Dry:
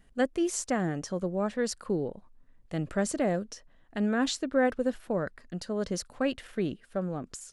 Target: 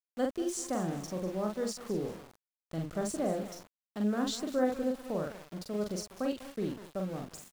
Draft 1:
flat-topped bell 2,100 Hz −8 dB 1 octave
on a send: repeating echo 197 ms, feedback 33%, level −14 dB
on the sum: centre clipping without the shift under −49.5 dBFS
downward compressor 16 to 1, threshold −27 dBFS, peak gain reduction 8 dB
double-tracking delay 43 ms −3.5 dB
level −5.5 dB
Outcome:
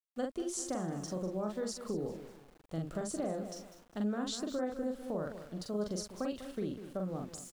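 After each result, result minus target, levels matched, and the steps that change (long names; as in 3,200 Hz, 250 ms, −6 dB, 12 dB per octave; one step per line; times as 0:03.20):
downward compressor: peak gain reduction +8 dB; centre clipping without the shift: distortion −11 dB
remove: downward compressor 16 to 1, threshold −27 dBFS, peak gain reduction 8 dB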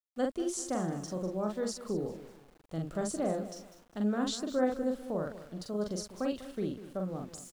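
centre clipping without the shift: distortion −11 dB
change: centre clipping without the shift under −40 dBFS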